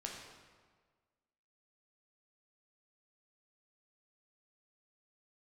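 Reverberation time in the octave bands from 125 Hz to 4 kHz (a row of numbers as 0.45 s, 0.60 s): 1.6 s, 1.6 s, 1.6 s, 1.5 s, 1.3 s, 1.1 s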